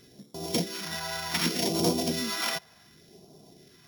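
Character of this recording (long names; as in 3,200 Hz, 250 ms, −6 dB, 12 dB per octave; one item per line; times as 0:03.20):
a buzz of ramps at a fixed pitch in blocks of 8 samples
phaser sweep stages 2, 0.67 Hz, lowest notch 310–1,700 Hz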